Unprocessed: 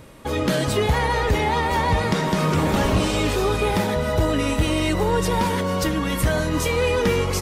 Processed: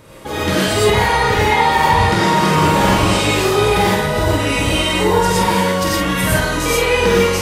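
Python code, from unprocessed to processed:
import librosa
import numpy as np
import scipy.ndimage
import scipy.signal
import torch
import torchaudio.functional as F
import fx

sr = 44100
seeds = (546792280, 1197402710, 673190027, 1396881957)

y = fx.low_shelf(x, sr, hz=170.0, db=-5.5)
y = fx.doubler(y, sr, ms=47.0, db=-5.0)
y = fx.rev_gated(y, sr, seeds[0], gate_ms=140, shape='rising', drr_db=-5.5)
y = y * 10.0 ** (1.0 / 20.0)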